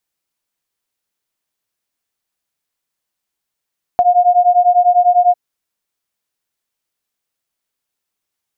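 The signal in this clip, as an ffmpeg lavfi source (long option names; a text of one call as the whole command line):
ffmpeg -f lavfi -i "aevalsrc='0.282*(sin(2*PI*708*t)+sin(2*PI*718*t))':duration=1.35:sample_rate=44100" out.wav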